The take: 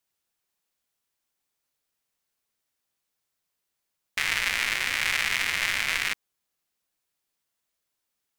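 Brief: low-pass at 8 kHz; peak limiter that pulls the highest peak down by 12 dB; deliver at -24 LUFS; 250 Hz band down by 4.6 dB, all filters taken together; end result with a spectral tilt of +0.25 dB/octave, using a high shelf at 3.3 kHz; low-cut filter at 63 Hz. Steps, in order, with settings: high-pass 63 Hz; low-pass 8 kHz; peaking EQ 250 Hz -6.5 dB; treble shelf 3.3 kHz -3.5 dB; trim +11.5 dB; peak limiter -11.5 dBFS

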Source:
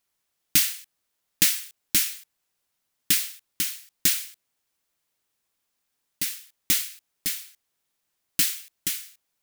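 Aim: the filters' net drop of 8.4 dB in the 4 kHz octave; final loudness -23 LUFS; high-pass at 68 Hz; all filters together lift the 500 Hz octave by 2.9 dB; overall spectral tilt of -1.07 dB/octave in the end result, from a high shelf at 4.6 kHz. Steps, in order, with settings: high-pass 68 Hz; peaking EQ 500 Hz +4.5 dB; peaking EQ 4 kHz -6.5 dB; treble shelf 4.6 kHz -8.5 dB; trim +9 dB

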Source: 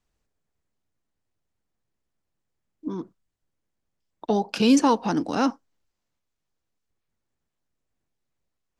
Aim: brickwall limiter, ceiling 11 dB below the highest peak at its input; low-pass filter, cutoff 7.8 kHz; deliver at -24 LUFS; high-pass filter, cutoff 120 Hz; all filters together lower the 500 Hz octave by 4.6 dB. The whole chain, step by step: high-pass 120 Hz; low-pass 7.8 kHz; peaking EQ 500 Hz -5.5 dB; trim +8 dB; peak limiter -12.5 dBFS

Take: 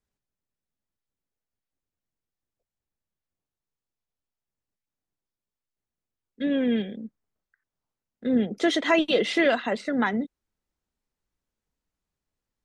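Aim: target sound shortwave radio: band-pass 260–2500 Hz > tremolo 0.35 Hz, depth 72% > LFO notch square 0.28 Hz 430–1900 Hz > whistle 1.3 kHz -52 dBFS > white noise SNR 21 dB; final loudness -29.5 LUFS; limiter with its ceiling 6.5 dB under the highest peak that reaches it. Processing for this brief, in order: peak limiter -16 dBFS; band-pass 260–2500 Hz; tremolo 0.35 Hz, depth 72%; LFO notch square 0.28 Hz 430–1900 Hz; whistle 1.3 kHz -52 dBFS; white noise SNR 21 dB; trim +5 dB

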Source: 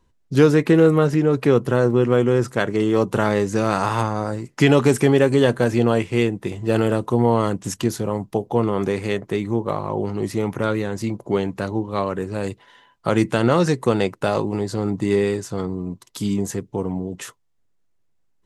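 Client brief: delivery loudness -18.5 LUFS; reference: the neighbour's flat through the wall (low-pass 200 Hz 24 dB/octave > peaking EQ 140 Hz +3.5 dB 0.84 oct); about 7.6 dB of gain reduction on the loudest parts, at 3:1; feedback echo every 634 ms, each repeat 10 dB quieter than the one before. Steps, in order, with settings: compression 3:1, threshold -20 dBFS; low-pass 200 Hz 24 dB/octave; peaking EQ 140 Hz +3.5 dB 0.84 oct; feedback delay 634 ms, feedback 32%, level -10 dB; trim +11 dB

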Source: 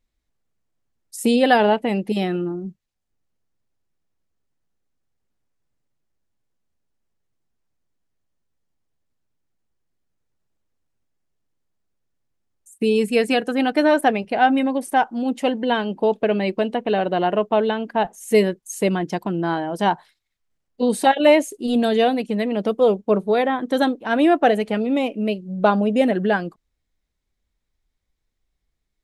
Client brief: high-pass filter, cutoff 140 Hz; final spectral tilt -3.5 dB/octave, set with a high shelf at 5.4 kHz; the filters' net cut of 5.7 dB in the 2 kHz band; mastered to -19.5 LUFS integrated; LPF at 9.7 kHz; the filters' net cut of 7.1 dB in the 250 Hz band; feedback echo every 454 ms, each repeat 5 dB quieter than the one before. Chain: high-pass 140 Hz; low-pass 9.7 kHz; peaking EQ 250 Hz -8 dB; peaking EQ 2 kHz -7 dB; treble shelf 5.4 kHz -4.5 dB; feedback delay 454 ms, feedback 56%, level -5 dB; trim +2.5 dB

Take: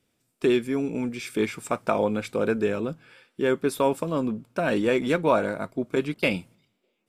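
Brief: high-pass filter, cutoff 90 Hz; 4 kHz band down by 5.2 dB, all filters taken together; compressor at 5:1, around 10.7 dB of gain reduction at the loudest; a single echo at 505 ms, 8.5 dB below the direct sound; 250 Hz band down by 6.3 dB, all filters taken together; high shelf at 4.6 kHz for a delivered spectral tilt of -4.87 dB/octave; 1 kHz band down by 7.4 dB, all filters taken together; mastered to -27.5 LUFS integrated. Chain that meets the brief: high-pass 90 Hz; peaking EQ 250 Hz -7.5 dB; peaking EQ 1 kHz -9 dB; peaking EQ 4 kHz -8 dB; treble shelf 4.6 kHz +3.5 dB; compression 5:1, threshold -34 dBFS; delay 505 ms -8.5 dB; trim +11 dB

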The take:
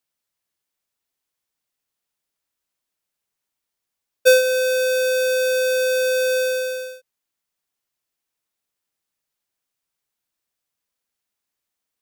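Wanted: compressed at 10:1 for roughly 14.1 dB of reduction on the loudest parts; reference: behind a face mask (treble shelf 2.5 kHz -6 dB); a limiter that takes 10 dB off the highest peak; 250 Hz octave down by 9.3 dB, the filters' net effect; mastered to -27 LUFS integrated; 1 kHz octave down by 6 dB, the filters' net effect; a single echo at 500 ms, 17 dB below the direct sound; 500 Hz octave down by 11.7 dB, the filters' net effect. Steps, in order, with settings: peaking EQ 250 Hz -8.5 dB; peaking EQ 500 Hz -9 dB; peaking EQ 1 kHz -4.5 dB; compression 10:1, threshold -28 dBFS; peak limiter -25 dBFS; treble shelf 2.5 kHz -6 dB; delay 500 ms -17 dB; trim +8.5 dB

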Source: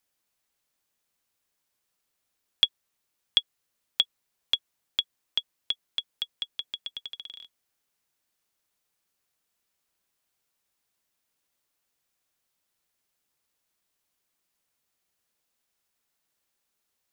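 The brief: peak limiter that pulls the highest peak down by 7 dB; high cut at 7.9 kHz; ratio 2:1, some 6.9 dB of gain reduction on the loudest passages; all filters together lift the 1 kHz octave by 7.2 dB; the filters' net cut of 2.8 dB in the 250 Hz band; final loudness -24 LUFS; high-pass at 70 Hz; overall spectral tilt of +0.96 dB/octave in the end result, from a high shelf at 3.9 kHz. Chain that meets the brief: high-pass 70 Hz; low-pass 7.9 kHz; peaking EQ 250 Hz -4.5 dB; peaking EQ 1 kHz +9 dB; treble shelf 3.9 kHz +3.5 dB; compression 2:1, threshold -29 dBFS; trim +12.5 dB; peak limiter 0 dBFS

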